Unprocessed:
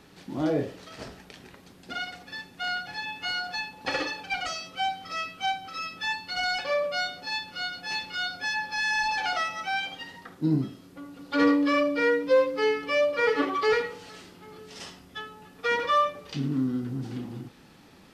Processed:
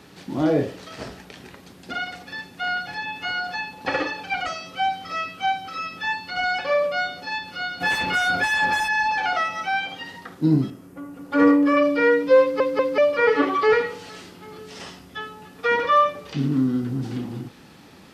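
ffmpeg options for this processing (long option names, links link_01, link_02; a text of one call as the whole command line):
ffmpeg -i in.wav -filter_complex "[0:a]asplit=3[link_01][link_02][link_03];[link_01]afade=type=out:start_time=7.8:duration=0.02[link_04];[link_02]aeval=exprs='0.0944*sin(PI/2*3.16*val(0)/0.0944)':channel_layout=same,afade=type=in:start_time=7.8:duration=0.02,afade=type=out:start_time=8.87:duration=0.02[link_05];[link_03]afade=type=in:start_time=8.87:duration=0.02[link_06];[link_04][link_05][link_06]amix=inputs=3:normalize=0,asettb=1/sr,asplit=3[link_07][link_08][link_09];[link_07]atrim=end=10.704[link_10];[link_08]atrim=start=10.7:end=11.77,asetpts=PTS-STARTPTS,afade=type=in:duration=0.004:curve=qsin,afade=type=out:start_time=1.066:duration=0.004:curve=qsin,equalizer=frequency=4000:width=1.1:gain=-13[link_11];[link_09]atrim=start=11.766[link_12];[link_10][link_11]acrossfade=duration=0.004:curve1=hsin:curve2=qsin[link_13];[link_13][link_12]acrossfade=duration=0.004:curve1=qsin:curve2=hsin,asplit=4[link_14][link_15][link_16][link_17];[link_14]atrim=end=12.602[link_18];[link_15]atrim=start=12.408:end=12.602[link_19];[link_16]atrim=start=12.408:end=12.602[link_20];[link_17]atrim=start=12.978[link_21];[link_18][link_19]acrossfade=duration=0.004:curve1=hsin:curve2=hsin[link_22];[link_22][link_20]acrossfade=duration=0.004:curve1=hsin:curve2=hsin[link_23];[link_23][link_21]acrossfade=duration=0.004:curve1=hsin:curve2=hsin,acrossover=split=2600[link_24][link_25];[link_25]acompressor=threshold=-46dB:ratio=4:attack=1:release=60[link_26];[link_24][link_26]amix=inputs=2:normalize=0,highpass=48,volume=6dB" out.wav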